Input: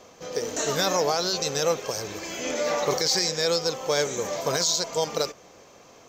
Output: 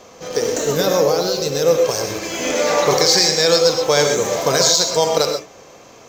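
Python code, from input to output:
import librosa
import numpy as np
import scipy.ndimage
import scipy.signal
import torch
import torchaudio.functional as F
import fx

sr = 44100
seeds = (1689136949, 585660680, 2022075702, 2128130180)

p1 = np.where(np.abs(x) >= 10.0 ** (-29.5 / 20.0), x, 0.0)
p2 = x + (p1 * 10.0 ** (-12.0 / 20.0))
p3 = fx.spec_box(p2, sr, start_s=0.57, length_s=1.18, low_hz=590.0, high_hz=11000.0, gain_db=-7)
p4 = fx.rev_gated(p3, sr, seeds[0], gate_ms=150, shape='rising', drr_db=4.5)
y = p4 * 10.0 ** (6.5 / 20.0)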